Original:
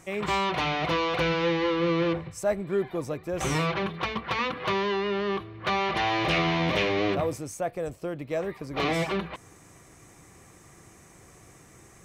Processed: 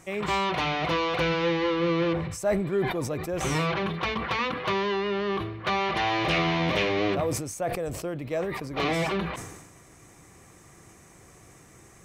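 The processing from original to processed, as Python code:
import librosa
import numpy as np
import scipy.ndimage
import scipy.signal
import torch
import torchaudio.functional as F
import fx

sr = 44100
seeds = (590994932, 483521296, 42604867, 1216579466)

y = fx.sustainer(x, sr, db_per_s=49.0)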